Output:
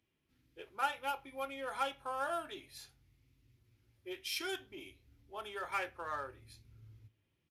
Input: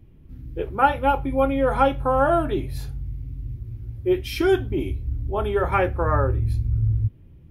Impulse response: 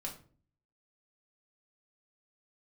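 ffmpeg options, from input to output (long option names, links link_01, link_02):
-filter_complex "[0:a]adynamicsmooth=sensitivity=5:basefreq=6000,aresample=32000,aresample=44100,aderivative,asplit=2[link_01][link_02];[1:a]atrim=start_sample=2205,asetrate=57330,aresample=44100[link_03];[link_02][link_03]afir=irnorm=-1:irlink=0,volume=-13dB[link_04];[link_01][link_04]amix=inputs=2:normalize=0"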